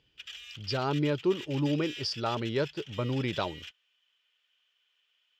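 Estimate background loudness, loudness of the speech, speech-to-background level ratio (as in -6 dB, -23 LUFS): -43.0 LUFS, -31.0 LUFS, 12.0 dB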